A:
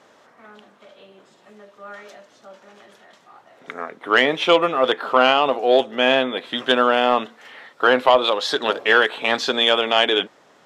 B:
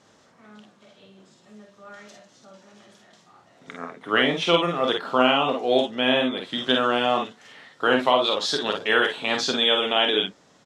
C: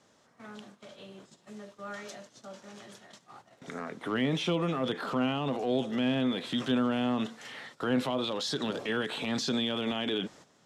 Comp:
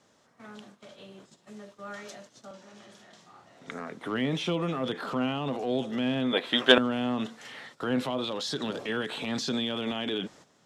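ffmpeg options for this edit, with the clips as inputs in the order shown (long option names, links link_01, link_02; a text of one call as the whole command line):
ffmpeg -i take0.wav -i take1.wav -i take2.wav -filter_complex "[2:a]asplit=3[link_01][link_02][link_03];[link_01]atrim=end=2.512[link_04];[1:a]atrim=start=2.508:end=3.722[link_05];[link_02]atrim=start=3.718:end=6.332[link_06];[0:a]atrim=start=6.328:end=6.782[link_07];[link_03]atrim=start=6.778[link_08];[link_04][link_05]acrossfade=duration=0.004:curve1=hsin:curve2=hsin[link_09];[link_09][link_06]acrossfade=duration=0.004:curve1=hsin:curve2=hsin[link_10];[link_10][link_07]acrossfade=duration=0.004:curve1=hsin:curve2=hsin[link_11];[link_11][link_08]acrossfade=duration=0.004:curve1=hsin:curve2=hsin" out.wav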